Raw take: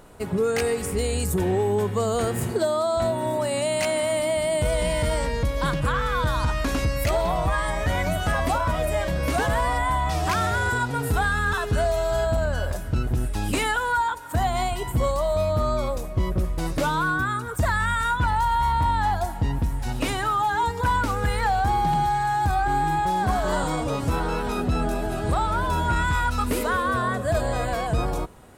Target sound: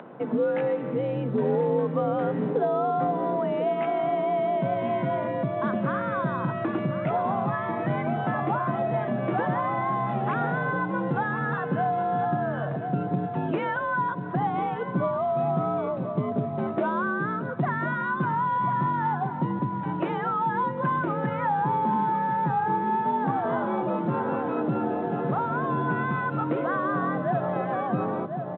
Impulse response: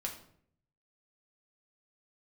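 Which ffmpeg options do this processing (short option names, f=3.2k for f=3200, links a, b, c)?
-filter_complex "[0:a]highpass=f=75:w=0.5412,highpass=f=75:w=1.3066,lowshelf=f=120:g=-7,afreqshift=57,equalizer=f=180:t=o:w=2.9:g=4.5,asplit=2[a][b];[b]adelay=1044,lowpass=f=1.1k:p=1,volume=-8dB,asplit=2[c][d];[d]adelay=1044,lowpass=f=1.1k:p=1,volume=0.21,asplit=2[e][f];[f]adelay=1044,lowpass=f=1.1k:p=1,volume=0.21[g];[a][c][e][g]amix=inputs=4:normalize=0,asplit=2[h][i];[i]acompressor=threshold=-31dB:ratio=12,volume=3dB[j];[h][j]amix=inputs=2:normalize=0,lowpass=1.5k,acompressor=mode=upward:threshold=-34dB:ratio=2.5,volume=-5.5dB" -ar 8000 -c:a pcm_mulaw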